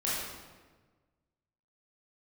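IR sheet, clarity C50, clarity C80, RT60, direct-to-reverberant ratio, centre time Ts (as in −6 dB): −2.0 dB, 1.0 dB, 1.4 s, −8.5 dB, 94 ms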